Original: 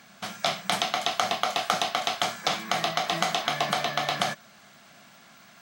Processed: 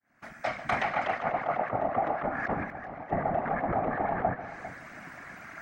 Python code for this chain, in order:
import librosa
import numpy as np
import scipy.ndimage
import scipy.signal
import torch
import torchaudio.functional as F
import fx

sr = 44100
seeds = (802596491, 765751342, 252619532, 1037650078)

p1 = fx.fade_in_head(x, sr, length_s=1.82)
p2 = fx.env_lowpass_down(p1, sr, base_hz=570.0, full_db=-23.5)
p3 = fx.high_shelf_res(p2, sr, hz=2600.0, db=-9.0, q=3.0)
p4 = p3 + 0.94 * np.pad(p3, (int(4.2 * sr / 1000.0), 0))[:len(p3)]
p5 = fx.over_compress(p4, sr, threshold_db=-29.0, ratio=-0.5)
p6 = fx.whisperise(p5, sr, seeds[0])
p7 = fx.pre_emphasis(p6, sr, coefficient=0.8, at=(2.63, 3.1), fade=0.02)
p8 = p7 + fx.echo_multitap(p7, sr, ms=(143, 400), db=(-15.0, -14.0), dry=0)
y = p8 * librosa.db_to_amplitude(1.5)